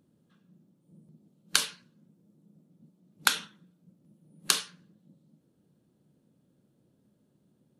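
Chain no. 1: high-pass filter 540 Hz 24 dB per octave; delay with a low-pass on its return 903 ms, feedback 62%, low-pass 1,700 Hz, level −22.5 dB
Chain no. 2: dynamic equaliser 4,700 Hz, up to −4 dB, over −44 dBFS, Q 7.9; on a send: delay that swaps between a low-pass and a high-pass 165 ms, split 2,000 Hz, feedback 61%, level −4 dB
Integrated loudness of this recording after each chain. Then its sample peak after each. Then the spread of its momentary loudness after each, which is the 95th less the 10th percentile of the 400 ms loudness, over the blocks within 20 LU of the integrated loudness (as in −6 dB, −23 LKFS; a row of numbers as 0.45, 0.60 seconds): −28.5, −31.5 LKFS; −2.0, −2.5 dBFS; 9, 18 LU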